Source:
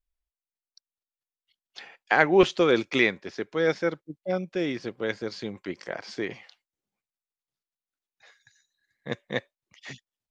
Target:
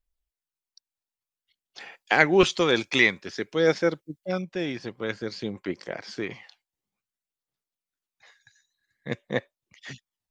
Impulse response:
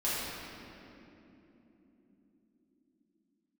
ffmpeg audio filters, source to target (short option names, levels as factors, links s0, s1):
-filter_complex "[0:a]asettb=1/sr,asplit=3[s0][s1][s2];[s0]atrim=end=1.804[s3];[s1]atrim=start=1.8:end=4.42,asetpts=PTS-STARTPTS,afade=t=in:d=0.004:c=qsin,afade=t=out:st=2.616:d=0.004:c=qsin,highshelf=f=3500:g=9[s4];[s2]atrim=start=4.416[s5];[s3][s4]acrossfade=d=0.004:c1=hsin:c2=qsin[s6];[s6][s5]acrossfade=d=0.004:c1=qsin:c2=hsin,aphaser=in_gain=1:out_gain=1:delay=1.3:decay=0.34:speed=0.53:type=triangular"